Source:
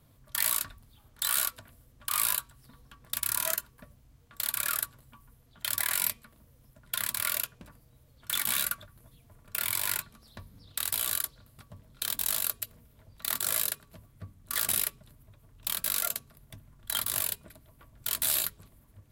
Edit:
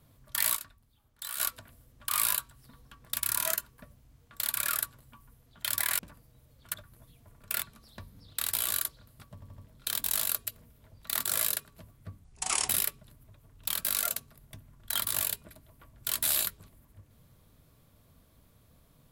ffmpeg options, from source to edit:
-filter_complex "[0:a]asplit=11[s0][s1][s2][s3][s4][s5][s6][s7][s8][s9][s10];[s0]atrim=end=0.562[s11];[s1]atrim=start=0.558:end=1.402,asetpts=PTS-STARTPTS,volume=0.316[s12];[s2]atrim=start=1.398:end=5.992[s13];[s3]atrim=start=7.568:end=8.322[s14];[s4]atrim=start=8.778:end=9.662[s15];[s5]atrim=start=10.008:end=11.812[s16];[s6]atrim=start=11.728:end=11.812[s17];[s7]atrim=start=11.728:end=11.812[s18];[s8]atrim=start=11.728:end=14.394[s19];[s9]atrim=start=14.39:end=14.68,asetpts=PTS-STARTPTS,asetrate=28665,aresample=44100,atrim=end_sample=19675,asetpts=PTS-STARTPTS[s20];[s10]atrim=start=14.676[s21];[s11][s12]acrossfade=d=0.004:c1=hsin:c2=hsin[s22];[s22][s13]acrossfade=d=0.004:c1=hsin:c2=hsin[s23];[s23][s14]acrossfade=d=0.004:c1=hsin:c2=hsin[s24];[s24][s15]acrossfade=d=0.004:c1=hsin:c2=hsin[s25];[s25][s16]acrossfade=d=0.004:c1=hsin:c2=hsin[s26];[s26][s17]acrossfade=d=0.004:c1=hsin:c2=hsin[s27];[s27][s18]acrossfade=d=0.004:c1=hsin:c2=hsin[s28];[s28][s19]acrossfade=d=0.004:c1=hsin:c2=hsin[s29];[s29][s20]acrossfade=d=0.004:c1=hsin:c2=hsin[s30];[s30][s21]acrossfade=d=0.004:c1=hsin:c2=hsin"

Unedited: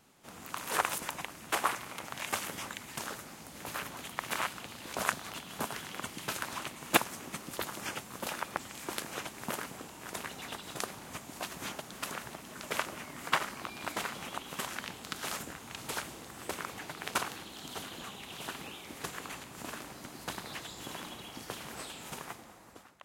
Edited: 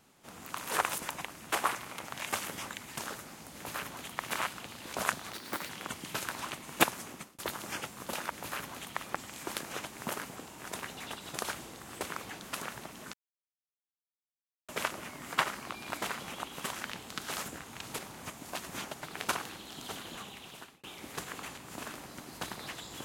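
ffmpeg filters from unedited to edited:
-filter_complex "[0:a]asplit=12[s0][s1][s2][s3][s4][s5][s6][s7][s8][s9][s10][s11];[s0]atrim=end=5.334[s12];[s1]atrim=start=5.33:end=5.83,asetpts=PTS-STARTPTS,asetrate=60417,aresample=44100[s13];[s2]atrim=start=5.826:end=7.52,asetpts=PTS-STARTPTS,afade=t=out:st=1.384:d=0.31[s14];[s3]atrim=start=7.52:end=8.442,asetpts=PTS-STARTPTS,afade=t=in:d=0.004:c=hsin[s15];[s4]atrim=start=3.528:end=4.252[s16];[s5]atrim=start=8.438:end=10.862[s17];[s6]atrim=start=15.928:end=16.882[s18];[s7]atrim=start=11.888:end=12.63,asetpts=PTS-STARTPTS,afade=t=out:st=0.738:d=0.004:c=hsin,apad=pad_dur=1.55[s19];[s8]atrim=start=12.63:end=15.932,asetpts=PTS-STARTPTS,afade=t=in:d=0.004:c=hsin[s20];[s9]atrim=start=10.858:end=11.892[s21];[s10]atrim=start=16.878:end=18.7,asetpts=PTS-STARTPTS,afade=t=out:st=1.242:d=0.58[s22];[s11]atrim=start=18.7,asetpts=PTS-STARTPTS,afade=t=in:d=0.004:c=hsin[s23];[s12][s13]acrossfade=d=0.004:c1=hsin:c2=hsin[s24];[s14][s15]concat=n=2:v=0:a=1[s25];[s24][s25]acrossfade=d=0.004:c1=hsin:c2=hsin[s26];[s26][s16]acrossfade=d=0.004:c1=hsin:c2=hsin[s27];[s27][s17]acrossfade=d=0.004:c1=hsin:c2=hsin[s28];[s28][s18]acrossfade=d=0.004:c1=hsin:c2=hsin[s29];[s19][s20]concat=n=2:v=0:a=1[s30];[s29][s30]acrossfade=d=0.004:c1=hsin:c2=hsin[s31];[s31][s21]acrossfade=d=0.004:c1=hsin:c2=hsin[s32];[s22][s23]concat=n=2:v=0:a=1[s33];[s32][s33]acrossfade=d=0.004:c1=hsin:c2=hsin"

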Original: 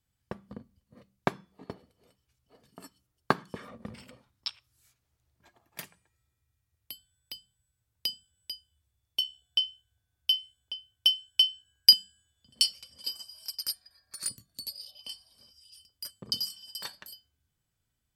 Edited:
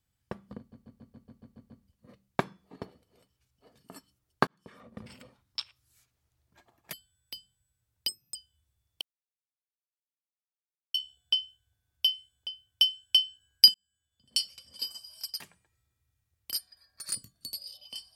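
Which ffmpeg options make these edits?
-filter_complex "[0:a]asplit=17[s0][s1][s2][s3][s4][s5][s6][s7][s8][s9][s10][s11][s12][s13][s14][s15][s16];[s0]atrim=end=0.722[s17];[s1]atrim=start=0.578:end=0.722[s18];[s2]atrim=start=0.578:end=0.722[s19];[s3]atrim=start=0.578:end=0.722[s20];[s4]atrim=start=0.578:end=0.722[s21];[s5]atrim=start=0.578:end=0.722[s22];[s6]atrim=start=0.578:end=0.722[s23];[s7]atrim=start=0.578:end=0.722[s24];[s8]atrim=start=0.578:end=3.35,asetpts=PTS-STARTPTS,afade=t=out:st=2.768:d=0.004:c=hsin[s25];[s9]atrim=start=3.35:end=5.812,asetpts=PTS-STARTPTS,afade=t=in:d=0.71[s26];[s10]atrim=start=6.918:end=8.074[s27];[s11]atrim=start=8.07:end=8.53,asetpts=PTS-STARTPTS,asetrate=74529,aresample=44100[s28];[s12]atrim=start=8.526:end=9.19,asetpts=PTS-STARTPTS,afade=t=out:st=0.66:d=0.004:c=hsin,apad=pad_dur=1.93[s29];[s13]atrim=start=9.19:end=11.99,asetpts=PTS-STARTPTS,afade=t=in:d=0.004:c=hsin,afade=t=out:st=2.796:d=0.004:c=hsin[s30];[s14]atrim=start=11.99:end=13.652,asetpts=PTS-STARTPTS,afade=t=in:d=0.97[s31];[s15]atrim=start=5.808:end=6.922[s32];[s16]atrim=start=13.648[s33];[s17][s18]acrossfade=d=0.004:c1=hsin:c2=hsin[s34];[s34][s19]acrossfade=d=0.004:c1=hsin:c2=hsin[s35];[s35][s20]acrossfade=d=0.004:c1=hsin:c2=hsin[s36];[s36][s21]acrossfade=d=0.004:c1=hsin:c2=hsin[s37];[s37][s22]acrossfade=d=0.004:c1=hsin:c2=hsin[s38];[s38][s23]acrossfade=d=0.004:c1=hsin:c2=hsin[s39];[s39][s24]acrossfade=d=0.004:c1=hsin:c2=hsin[s40];[s25][s26]concat=n=2:v=0:a=1[s41];[s40][s41]acrossfade=d=0.004:c1=hsin:c2=hsin[s42];[s42][s27]acrossfade=d=0.004:c1=hsin:c2=hsin[s43];[s43][s28]acrossfade=d=0.004:c1=hsin:c2=hsin[s44];[s29][s30][s31]concat=n=3:v=0:a=1[s45];[s44][s45]acrossfade=d=0.004:c1=hsin:c2=hsin[s46];[s46][s32]acrossfade=d=0.004:c1=hsin:c2=hsin[s47];[s47][s33]acrossfade=d=0.004:c1=hsin:c2=hsin"

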